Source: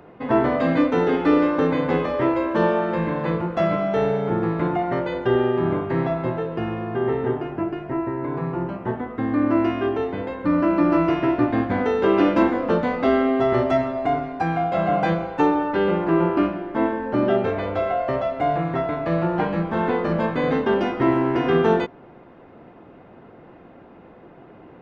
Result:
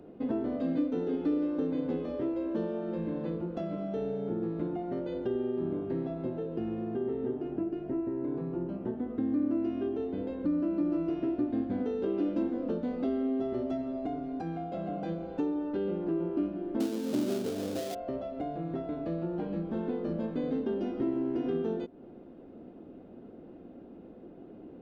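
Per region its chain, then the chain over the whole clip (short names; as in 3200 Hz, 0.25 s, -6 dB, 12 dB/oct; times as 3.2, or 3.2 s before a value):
16.8–17.95 half-waves squared off + HPF 110 Hz 24 dB/oct
whole clip: high shelf 4700 Hz -8 dB; compressor 3:1, threshold -29 dBFS; graphic EQ 125/250/1000/2000 Hz -8/+6/-12/-12 dB; gain -2.5 dB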